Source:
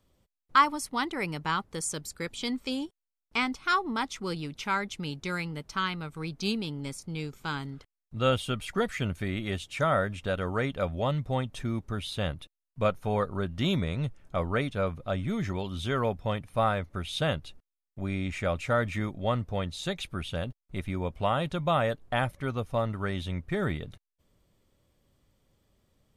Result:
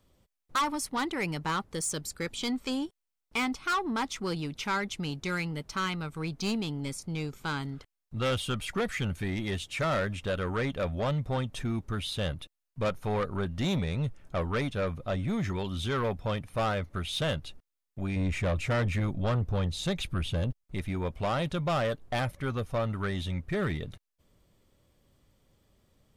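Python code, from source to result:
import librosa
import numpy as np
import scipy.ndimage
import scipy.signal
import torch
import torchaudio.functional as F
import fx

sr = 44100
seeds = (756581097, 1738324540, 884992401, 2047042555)

y = fx.low_shelf(x, sr, hz=240.0, db=8.5, at=(18.16, 20.64))
y = 10.0 ** (-26.5 / 20.0) * np.tanh(y / 10.0 ** (-26.5 / 20.0))
y = y * librosa.db_to_amplitude(2.5)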